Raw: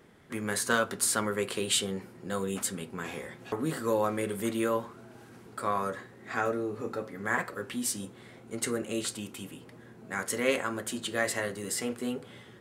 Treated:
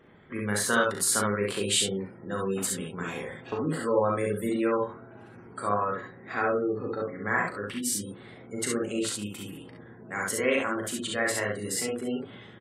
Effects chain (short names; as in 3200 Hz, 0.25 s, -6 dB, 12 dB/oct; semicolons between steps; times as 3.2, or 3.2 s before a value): spectral gate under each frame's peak -25 dB strong; early reflections 39 ms -5 dB, 57 ms -6.5 dB, 68 ms -3 dB